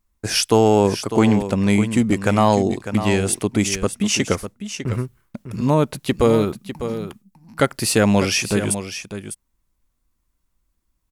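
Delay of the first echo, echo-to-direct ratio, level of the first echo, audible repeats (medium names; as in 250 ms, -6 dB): 601 ms, -10.5 dB, -10.5 dB, 1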